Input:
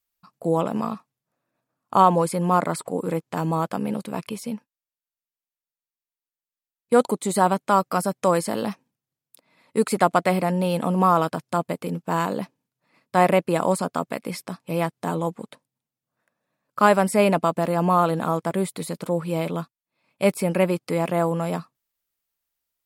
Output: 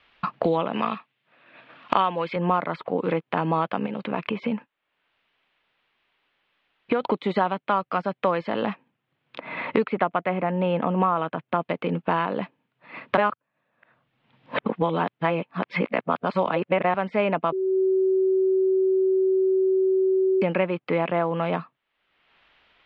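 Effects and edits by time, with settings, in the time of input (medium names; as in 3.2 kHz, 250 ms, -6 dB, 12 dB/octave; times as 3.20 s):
0.73–2.36 s: frequency weighting D
3.86–7.03 s: compression 2:1, threshold -36 dBFS
9.84–11.62 s: distance through air 370 m
13.17–16.94 s: reverse
17.52–20.42 s: bleep 379 Hz -19.5 dBFS
whole clip: steep low-pass 3.2 kHz 36 dB/octave; tilt EQ +2 dB/octave; three bands compressed up and down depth 100%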